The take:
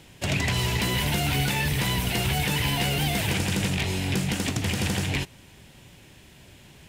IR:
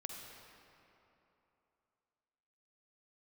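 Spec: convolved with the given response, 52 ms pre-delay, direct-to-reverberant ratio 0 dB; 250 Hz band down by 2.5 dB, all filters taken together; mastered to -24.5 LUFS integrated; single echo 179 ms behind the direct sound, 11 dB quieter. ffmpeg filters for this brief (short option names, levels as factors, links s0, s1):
-filter_complex "[0:a]equalizer=f=250:t=o:g=-4,aecho=1:1:179:0.282,asplit=2[s0][s1];[1:a]atrim=start_sample=2205,adelay=52[s2];[s1][s2]afir=irnorm=-1:irlink=0,volume=1.26[s3];[s0][s3]amix=inputs=2:normalize=0,volume=0.841"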